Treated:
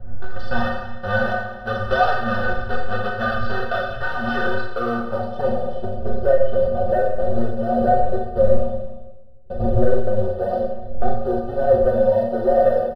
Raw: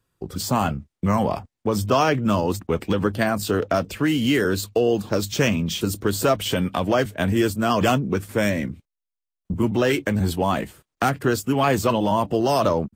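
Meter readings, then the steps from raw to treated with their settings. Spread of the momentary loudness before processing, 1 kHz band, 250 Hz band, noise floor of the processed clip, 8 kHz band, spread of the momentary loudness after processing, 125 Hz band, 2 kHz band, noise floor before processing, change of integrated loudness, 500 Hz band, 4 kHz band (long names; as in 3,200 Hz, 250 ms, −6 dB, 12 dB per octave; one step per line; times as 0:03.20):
6 LU, +1.5 dB, −5.5 dB, −32 dBFS, below −25 dB, 10 LU, −3.0 dB, +2.5 dB, −85 dBFS, +0.5 dB, +4.0 dB, −9.0 dB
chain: each half-wave held at its own peak
wind on the microphone 90 Hz −21 dBFS
parametric band 5,800 Hz +7.5 dB 0.39 octaves
low-pass filter sweep 1,500 Hz → 560 Hz, 0:04.45–0:05.91
graphic EQ with 10 bands 125 Hz −12 dB, 2,000 Hz −6 dB, 4,000 Hz +4 dB
leveller curve on the samples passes 1
phaser with its sweep stopped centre 1,500 Hz, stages 8
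stiff-string resonator 110 Hz, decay 0.29 s, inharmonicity 0.03
on a send: single-tap delay 300 ms −20.5 dB
on the sum: four-comb reverb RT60 0.91 s, combs from 30 ms, DRR 1.5 dB
level +4 dB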